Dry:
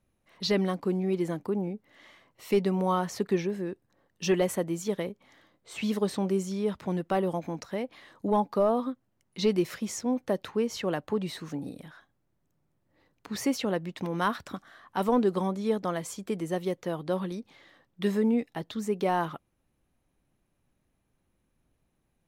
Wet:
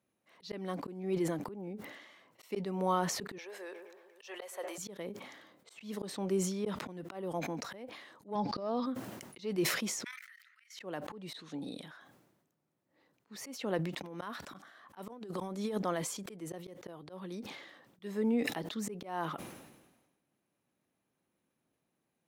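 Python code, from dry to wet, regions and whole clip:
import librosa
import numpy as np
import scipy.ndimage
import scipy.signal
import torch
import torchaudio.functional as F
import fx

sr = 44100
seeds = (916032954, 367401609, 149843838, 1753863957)

y = fx.chain(x, sr, fx.highpass(hz=550.0, slope=24),
    fx.echo_wet_lowpass(ms=118, feedback_pct=77, hz=1600.0, wet_db=-19.5),
    fx.band_squash(depth_pct=40), at=(3.38, 4.78))
y = fx.chain(y, sr, fx.lowpass_res(hz=4900.0, q=8.0),
    fx.peak_eq(hz=120.0, db=11.5, octaves=0.98), at=(8.35, 8.86))
y = fx.chain(y, sr, fx.cheby1_highpass(hz=1300.0, order=6),
    fx.peak_eq(hz=2000.0, db=14.5, octaves=0.48),
    fx.level_steps(step_db=14), at=(10.04, 10.78))
y = fx.chain(y, sr, fx.lowpass(hz=11000.0, slope=24),
    fx.peak_eq(hz=3700.0, db=13.5, octaves=0.49), at=(11.33, 11.86))
y = fx.chain(y, sr, fx.over_compress(threshold_db=-30.0, ratio=-0.5),
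    fx.high_shelf(hz=5600.0, db=6.0), at=(15.09, 15.79))
y = scipy.signal.sosfilt(scipy.signal.butter(2, 190.0, 'highpass', fs=sr, output='sos'), y)
y = fx.auto_swell(y, sr, attack_ms=285.0)
y = fx.sustainer(y, sr, db_per_s=48.0)
y = y * librosa.db_to_amplitude(-3.5)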